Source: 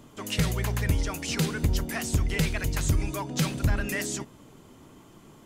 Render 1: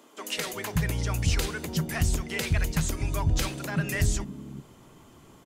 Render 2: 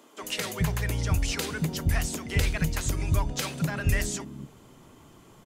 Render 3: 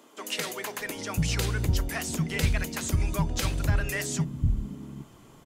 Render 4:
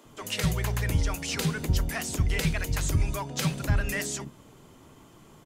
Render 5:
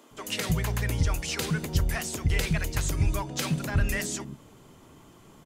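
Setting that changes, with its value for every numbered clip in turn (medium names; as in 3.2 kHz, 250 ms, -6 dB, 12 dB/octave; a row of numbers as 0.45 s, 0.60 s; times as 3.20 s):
bands offset in time, time: 370 ms, 220 ms, 790 ms, 50 ms, 110 ms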